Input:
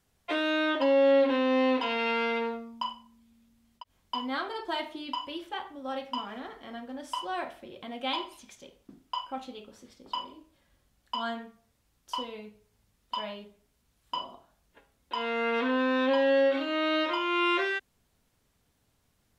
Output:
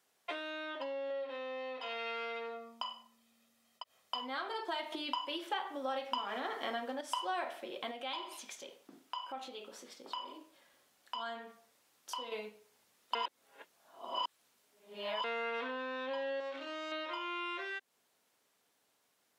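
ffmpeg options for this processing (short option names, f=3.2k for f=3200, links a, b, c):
-filter_complex "[0:a]asettb=1/sr,asplit=3[a][b][c];[a]atrim=end=1.104[d];[b]atrim=start=1.1:end=4.21,asetpts=PTS-STARTPTS,afade=t=in:d=0.004:c=qsin,afade=t=out:st=3.106:d=0.004:c=qsin,aecho=1:1:1.6:0.51,atrim=end_sample=137151[e];[c]atrim=start=4.206[f];[d][e]acrossfade=d=0.004:c1=hsin:c2=qsin[g];[g][f]acrossfade=d=0.004:c1=qsin:c2=hsin,asettb=1/sr,asplit=3[h][i][j];[h]atrim=end=4.924[k];[i]atrim=start=4.92:end=7.01,asetpts=PTS-STARTPTS,afade=t=in:d=0.004:c=qsin,afade=t=out:st=2.086:d=0.004:c=qsin,acontrast=83[l];[j]atrim=start=7.006[m];[k][l]acrossfade=d=0.004:c1=hsin:c2=qsin[n];[n][m]acrossfade=d=0.004:c1=qsin:c2=hsin,asettb=1/sr,asplit=3[o][p][q];[o]atrim=end=7.914[r];[p]atrim=start=7.91:end=12.32,asetpts=PTS-STARTPTS,afade=t=in:d=0.004:c=qsin,afade=t=out:st=4.406:d=0.004:c=qsin,acompressor=threshold=-47dB:ratio=2.5:attack=3.2:release=140:knee=1:detection=peak[s];[q]atrim=start=12.316[t];[r][s]acrossfade=d=0.004:c1=hsin:c2=qsin[u];[u][t]acrossfade=d=0.004:c1=qsin:c2=hsin,asettb=1/sr,asplit=3[v][w][x];[v]atrim=end=16.404[y];[w]atrim=start=16.4:end=16.92,asetpts=PTS-STARTPTS,afade=t=in:d=0.004:c=qsin,afade=t=out:st=0.516:d=0.004:c=qsin,aeval=exprs='(tanh(20*val(0)+0.8)-tanh(0.8))/20':c=same[z];[x]atrim=start=16.916[aa];[y][z]acrossfade=d=0.004:c1=hsin:c2=qsin[ab];[ab][aa]acrossfade=d=0.004:c1=qsin:c2=hsin,asplit=3[ac][ad][ae];[ac]atrim=end=13.152[af];[ad]atrim=start=13.148:end=15.242,asetpts=PTS-STARTPTS,areverse[ag];[ae]atrim=start=15.238[ah];[af][ag]acrossfade=d=0.004:c1=hsin:c2=hsin[ai];[ai][ah]acrossfade=d=0.004:c1=hsin:c2=hsin,acompressor=threshold=-37dB:ratio=8,highpass=420,dynaudnorm=f=680:g=13:m=5dB"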